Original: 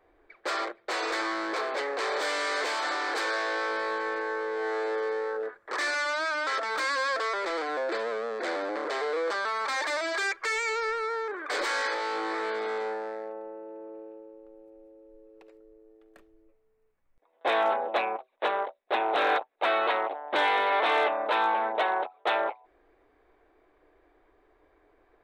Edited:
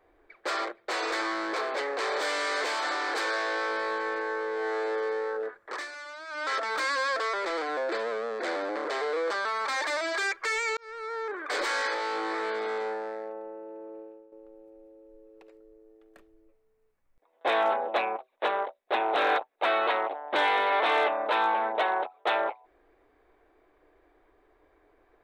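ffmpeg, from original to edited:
-filter_complex "[0:a]asplit=5[a][b][c][d][e];[a]atrim=end=5.88,asetpts=PTS-STARTPTS,afade=t=out:st=5.64:d=0.24:silence=0.223872[f];[b]atrim=start=5.88:end=6.27,asetpts=PTS-STARTPTS,volume=-13dB[g];[c]atrim=start=6.27:end=10.77,asetpts=PTS-STARTPTS,afade=t=in:d=0.24:silence=0.223872,afade=t=out:st=4.496:d=0.004:c=hsin[h];[d]atrim=start=10.77:end=14.32,asetpts=PTS-STARTPTS,afade=t=in:d=0.53,afade=t=out:st=3.23:d=0.32:silence=0.316228[i];[e]atrim=start=14.32,asetpts=PTS-STARTPTS,afade=t=in:d=0.004:c=hsin:silence=0.316228[j];[f][g][h][i][j]concat=n=5:v=0:a=1"

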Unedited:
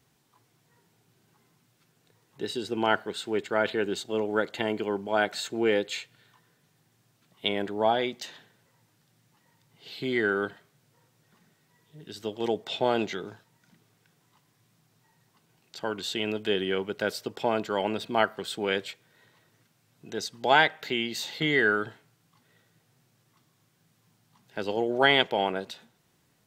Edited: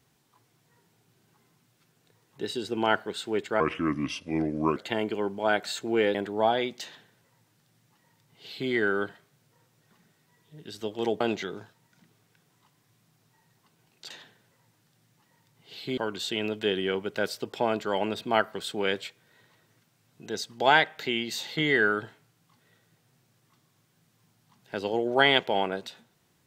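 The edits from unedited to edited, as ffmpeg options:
-filter_complex "[0:a]asplit=7[a][b][c][d][e][f][g];[a]atrim=end=3.604[h];[b]atrim=start=3.6:end=4.45,asetpts=PTS-STARTPTS,asetrate=32193,aresample=44100,atrim=end_sample=51349,asetpts=PTS-STARTPTS[i];[c]atrim=start=4.446:end=5.832[j];[d]atrim=start=7.558:end=12.622[k];[e]atrim=start=12.908:end=15.812[l];[f]atrim=start=8.248:end=10.122[m];[g]atrim=start=15.808[n];[h][i]acrossfade=d=0.004:c1=hsin:c2=hsin[o];[o][j]acrossfade=d=0.004:c1=hsin:c2=hsin[p];[p][k]acrossfade=d=0.004:c1=hsin:c2=hsin[q];[q][l]acrossfade=d=0.004:c1=hsin:c2=hsin[r];[r][m]acrossfade=d=0.004:c1=hsin:c2=hsin[s];[s][n]acrossfade=d=0.004:c1=hsin:c2=hsin"

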